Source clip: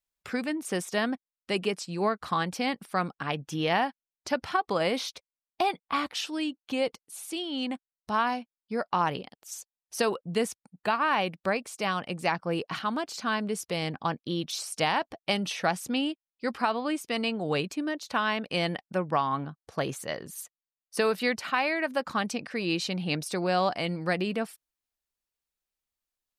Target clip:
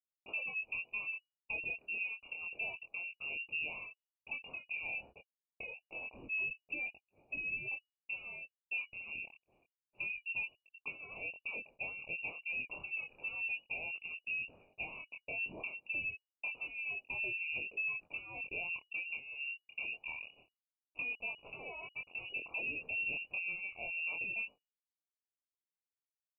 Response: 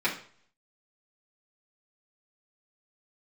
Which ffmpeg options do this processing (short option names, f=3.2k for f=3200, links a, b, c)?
-filter_complex "[0:a]agate=range=-33dB:threshold=-43dB:ratio=3:detection=peak,acompressor=threshold=-33dB:ratio=16,asplit=3[a][b][c];[a]afade=t=out:st=20.2:d=0.02[d];[b]aeval=exprs='val(0)*gte(abs(val(0)),0.0141)':c=same,afade=t=in:st=20.2:d=0.02,afade=t=out:st=22.29:d=0.02[e];[c]afade=t=in:st=22.29:d=0.02[f];[d][e][f]amix=inputs=3:normalize=0,flanger=delay=20:depth=7.3:speed=0.28,asoftclip=type=tanh:threshold=-35dB,asuperstop=centerf=1100:order=8:qfactor=0.65,lowpass=f=2.5k:t=q:w=0.5098,lowpass=f=2.5k:t=q:w=0.6013,lowpass=f=2.5k:t=q:w=0.9,lowpass=f=2.5k:t=q:w=2.563,afreqshift=-2900,volume=4dB"